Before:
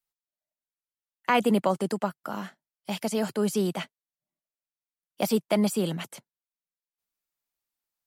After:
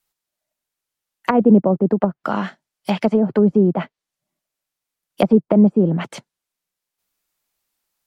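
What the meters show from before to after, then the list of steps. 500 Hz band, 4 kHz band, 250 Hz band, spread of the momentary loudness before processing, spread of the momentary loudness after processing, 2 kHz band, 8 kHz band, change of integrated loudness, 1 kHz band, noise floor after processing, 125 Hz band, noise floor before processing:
+9.5 dB, −1.5 dB, +12.5 dB, 13 LU, 14 LU, +2.5 dB, can't be measured, +10.5 dB, +5.0 dB, −85 dBFS, +12.5 dB, below −85 dBFS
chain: treble cut that deepens with the level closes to 440 Hz, closed at −23 dBFS
boost into a limiter +13.5 dB
level −1 dB

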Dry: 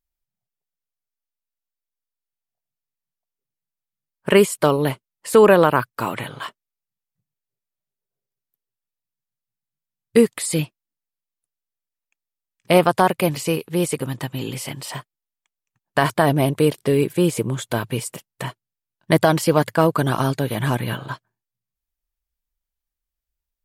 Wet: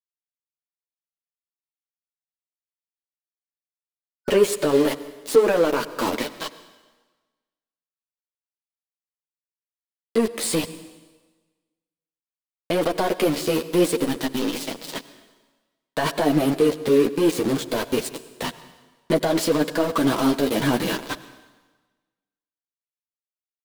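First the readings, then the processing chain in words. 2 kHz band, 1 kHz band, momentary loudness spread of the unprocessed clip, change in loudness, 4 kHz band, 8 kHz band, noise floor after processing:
−4.5 dB, −6.0 dB, 17 LU, −3.0 dB, +0.5 dB, −1.5 dB, below −85 dBFS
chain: centre clipping without the shift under −26 dBFS
octave-band graphic EQ 125/250/500/4,000 Hz −9/+7/+6/+5 dB
brickwall limiter −7 dBFS, peak gain reduction 10 dB
gain on a spectral selection 0:04.08–0:04.29, 1,500–5,100 Hz −6 dB
power curve on the samples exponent 0.7
multi-voice chorus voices 4, 1 Hz, delay 10 ms, depth 4 ms
dense smooth reverb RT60 1.3 s, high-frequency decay 0.95×, pre-delay 80 ms, DRR 15 dB
level −1.5 dB

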